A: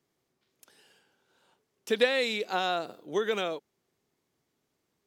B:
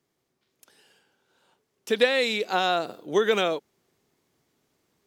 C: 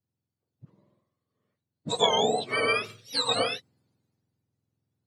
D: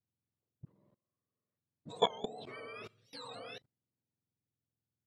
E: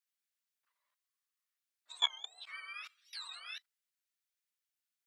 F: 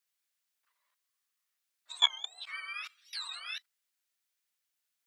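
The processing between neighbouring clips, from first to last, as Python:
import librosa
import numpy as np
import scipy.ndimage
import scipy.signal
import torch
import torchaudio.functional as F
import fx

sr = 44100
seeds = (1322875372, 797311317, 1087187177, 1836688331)

y1 = fx.rider(x, sr, range_db=10, speed_s=2.0)
y1 = F.gain(torch.from_numpy(y1), 5.5).numpy()
y2 = fx.octave_mirror(y1, sr, pivot_hz=1300.0)
y2 = fx.band_widen(y2, sr, depth_pct=40)
y3 = fx.high_shelf(y2, sr, hz=3500.0, db=-11.5)
y3 = fx.level_steps(y3, sr, step_db=23)
y3 = F.gain(torch.from_numpy(y3), -1.0).numpy()
y4 = scipy.signal.sosfilt(scipy.signal.butter(4, 1400.0, 'highpass', fs=sr, output='sos'), y3)
y4 = F.gain(torch.from_numpy(y4), 5.0).numpy()
y5 = fx.low_shelf(y4, sr, hz=430.0, db=-8.0)
y5 = F.gain(torch.from_numpy(y5), 6.0).numpy()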